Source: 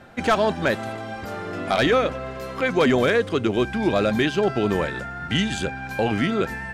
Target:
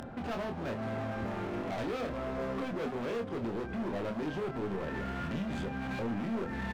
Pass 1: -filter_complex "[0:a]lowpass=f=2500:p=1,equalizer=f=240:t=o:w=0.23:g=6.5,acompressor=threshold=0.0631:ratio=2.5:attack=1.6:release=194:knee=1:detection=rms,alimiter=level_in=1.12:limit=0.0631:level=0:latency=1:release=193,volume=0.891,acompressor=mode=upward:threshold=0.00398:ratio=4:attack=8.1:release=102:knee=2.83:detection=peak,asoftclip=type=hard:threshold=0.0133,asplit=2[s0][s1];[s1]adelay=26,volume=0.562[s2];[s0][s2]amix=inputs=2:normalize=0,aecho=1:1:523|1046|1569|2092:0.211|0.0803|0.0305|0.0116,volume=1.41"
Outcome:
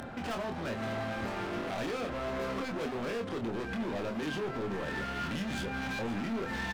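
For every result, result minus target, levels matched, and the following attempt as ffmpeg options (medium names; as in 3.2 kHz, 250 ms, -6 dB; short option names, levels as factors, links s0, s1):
echo 166 ms late; compression: peak gain reduction -4 dB; 2 kHz band +3.5 dB
-filter_complex "[0:a]lowpass=f=2500:p=1,equalizer=f=240:t=o:w=0.23:g=6.5,acompressor=threshold=0.0631:ratio=2.5:attack=1.6:release=194:knee=1:detection=rms,alimiter=level_in=1.12:limit=0.0631:level=0:latency=1:release=193,volume=0.891,acompressor=mode=upward:threshold=0.00398:ratio=4:attack=8.1:release=102:knee=2.83:detection=peak,asoftclip=type=hard:threshold=0.0133,asplit=2[s0][s1];[s1]adelay=26,volume=0.562[s2];[s0][s2]amix=inputs=2:normalize=0,aecho=1:1:357|714|1071|1428:0.211|0.0803|0.0305|0.0116,volume=1.41"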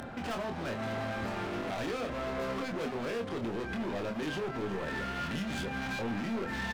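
compression: peak gain reduction -4 dB; 2 kHz band +4.0 dB
-filter_complex "[0:a]lowpass=f=2500:p=1,equalizer=f=240:t=o:w=0.23:g=6.5,acompressor=threshold=0.0282:ratio=2.5:attack=1.6:release=194:knee=1:detection=rms,alimiter=level_in=1.12:limit=0.0631:level=0:latency=1:release=193,volume=0.891,acompressor=mode=upward:threshold=0.00398:ratio=4:attack=8.1:release=102:knee=2.83:detection=peak,asoftclip=type=hard:threshold=0.0133,asplit=2[s0][s1];[s1]adelay=26,volume=0.562[s2];[s0][s2]amix=inputs=2:normalize=0,aecho=1:1:357|714|1071|1428:0.211|0.0803|0.0305|0.0116,volume=1.41"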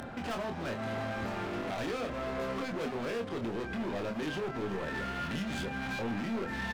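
2 kHz band +3.5 dB
-filter_complex "[0:a]lowpass=f=680:p=1,equalizer=f=240:t=o:w=0.23:g=6.5,acompressor=threshold=0.0282:ratio=2.5:attack=1.6:release=194:knee=1:detection=rms,alimiter=level_in=1.12:limit=0.0631:level=0:latency=1:release=193,volume=0.891,acompressor=mode=upward:threshold=0.00398:ratio=4:attack=8.1:release=102:knee=2.83:detection=peak,asoftclip=type=hard:threshold=0.0133,asplit=2[s0][s1];[s1]adelay=26,volume=0.562[s2];[s0][s2]amix=inputs=2:normalize=0,aecho=1:1:357|714|1071|1428:0.211|0.0803|0.0305|0.0116,volume=1.41"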